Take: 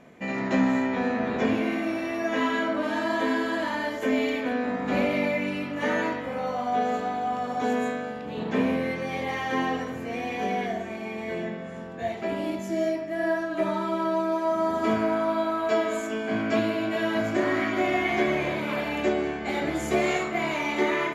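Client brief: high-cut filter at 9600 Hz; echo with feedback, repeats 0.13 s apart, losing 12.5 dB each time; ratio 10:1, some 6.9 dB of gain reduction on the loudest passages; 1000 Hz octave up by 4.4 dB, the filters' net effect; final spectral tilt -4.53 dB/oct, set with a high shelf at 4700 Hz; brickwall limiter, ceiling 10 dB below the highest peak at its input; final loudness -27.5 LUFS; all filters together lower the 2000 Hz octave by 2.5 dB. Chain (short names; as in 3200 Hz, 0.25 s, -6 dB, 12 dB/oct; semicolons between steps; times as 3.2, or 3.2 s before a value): LPF 9600 Hz; bell 1000 Hz +7 dB; bell 2000 Hz -4 dB; high shelf 4700 Hz -7 dB; compressor 10:1, threshold -25 dBFS; limiter -25.5 dBFS; feedback echo 0.13 s, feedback 24%, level -12.5 dB; gain +5.5 dB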